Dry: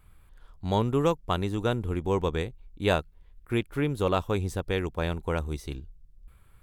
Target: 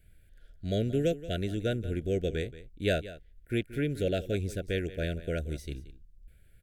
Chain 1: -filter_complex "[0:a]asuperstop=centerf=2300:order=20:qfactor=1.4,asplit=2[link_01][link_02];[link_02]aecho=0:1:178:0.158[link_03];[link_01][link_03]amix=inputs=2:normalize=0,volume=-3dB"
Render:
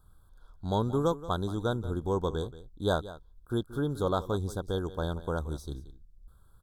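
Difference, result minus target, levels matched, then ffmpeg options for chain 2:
1,000 Hz band +11.5 dB
-filter_complex "[0:a]asuperstop=centerf=1000:order=20:qfactor=1.4,asplit=2[link_01][link_02];[link_02]aecho=0:1:178:0.158[link_03];[link_01][link_03]amix=inputs=2:normalize=0,volume=-3dB"

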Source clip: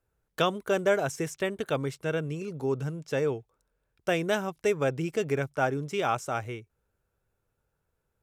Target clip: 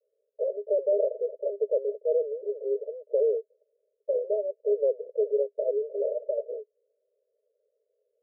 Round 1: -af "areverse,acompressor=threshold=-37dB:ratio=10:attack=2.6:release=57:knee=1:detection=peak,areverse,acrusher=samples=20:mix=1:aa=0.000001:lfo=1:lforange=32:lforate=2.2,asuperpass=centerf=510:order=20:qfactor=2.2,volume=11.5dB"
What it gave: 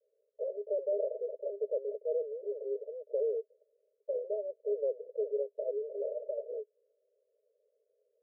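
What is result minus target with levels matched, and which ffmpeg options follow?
downward compressor: peak gain reduction +7.5 dB
-af "areverse,acompressor=threshold=-28.5dB:ratio=10:attack=2.6:release=57:knee=1:detection=peak,areverse,acrusher=samples=20:mix=1:aa=0.000001:lfo=1:lforange=32:lforate=2.2,asuperpass=centerf=510:order=20:qfactor=2.2,volume=11.5dB"

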